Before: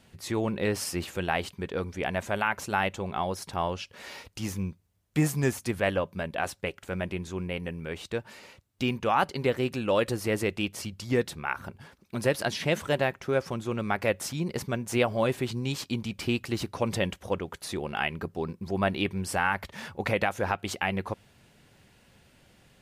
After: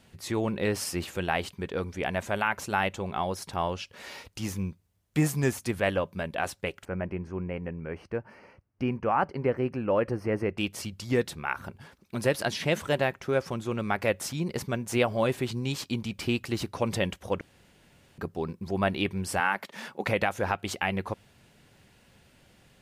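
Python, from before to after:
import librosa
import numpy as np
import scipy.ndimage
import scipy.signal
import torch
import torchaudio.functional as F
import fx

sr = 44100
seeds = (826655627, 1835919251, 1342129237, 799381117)

y = fx.moving_average(x, sr, points=12, at=(6.85, 10.58))
y = fx.highpass(y, sr, hz=190.0, slope=24, at=(19.4, 20.07))
y = fx.edit(y, sr, fx.room_tone_fill(start_s=17.41, length_s=0.77), tone=tone)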